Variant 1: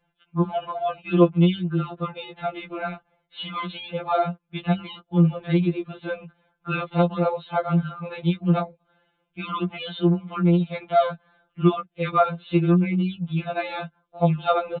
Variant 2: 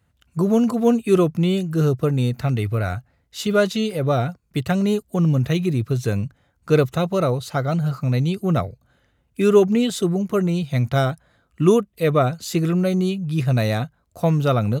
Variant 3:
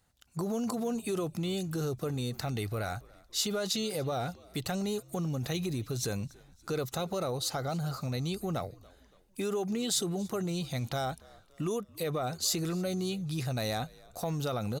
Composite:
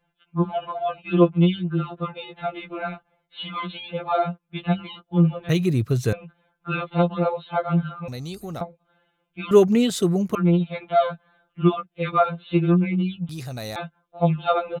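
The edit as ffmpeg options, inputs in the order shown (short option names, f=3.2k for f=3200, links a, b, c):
-filter_complex "[1:a]asplit=2[a][b];[2:a]asplit=2[c][d];[0:a]asplit=5[e][f][g][h][i];[e]atrim=end=5.492[j];[a]atrim=start=5.488:end=6.132[k];[f]atrim=start=6.128:end=8.082[l];[c]atrim=start=8.078:end=8.612[m];[g]atrim=start=8.608:end=9.512[n];[b]atrim=start=9.508:end=10.352[o];[h]atrim=start=10.348:end=13.292[p];[d]atrim=start=13.288:end=13.762[q];[i]atrim=start=13.758[r];[j][k]acrossfade=d=0.004:c1=hsin:c2=hsin[s];[s][l]acrossfade=d=0.004:c1=hsin:c2=hsin[t];[t][m]acrossfade=d=0.004:c1=hsin:c2=hsin[u];[u][n]acrossfade=d=0.004:c1=hsin:c2=hsin[v];[v][o]acrossfade=d=0.004:c1=hsin:c2=hsin[w];[w][p]acrossfade=d=0.004:c1=hsin:c2=hsin[x];[x][q]acrossfade=d=0.004:c1=hsin:c2=hsin[y];[y][r]acrossfade=d=0.004:c1=hsin:c2=hsin"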